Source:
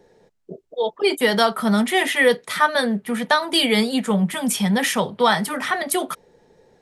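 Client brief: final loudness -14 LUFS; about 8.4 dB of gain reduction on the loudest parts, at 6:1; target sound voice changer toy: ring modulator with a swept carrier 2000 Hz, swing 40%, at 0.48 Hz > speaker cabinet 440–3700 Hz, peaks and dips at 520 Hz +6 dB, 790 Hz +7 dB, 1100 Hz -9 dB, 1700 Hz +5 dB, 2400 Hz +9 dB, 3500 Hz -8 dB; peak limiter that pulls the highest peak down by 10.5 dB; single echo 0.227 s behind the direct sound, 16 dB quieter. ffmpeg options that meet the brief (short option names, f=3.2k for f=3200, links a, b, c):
-af "acompressor=threshold=-21dB:ratio=6,alimiter=limit=-17dB:level=0:latency=1,aecho=1:1:227:0.158,aeval=exprs='val(0)*sin(2*PI*2000*n/s+2000*0.4/0.48*sin(2*PI*0.48*n/s))':c=same,highpass=440,equalizer=f=520:t=q:w=4:g=6,equalizer=f=790:t=q:w=4:g=7,equalizer=f=1.1k:t=q:w=4:g=-9,equalizer=f=1.7k:t=q:w=4:g=5,equalizer=f=2.4k:t=q:w=4:g=9,equalizer=f=3.5k:t=q:w=4:g=-8,lowpass=f=3.7k:w=0.5412,lowpass=f=3.7k:w=1.3066,volume=10.5dB"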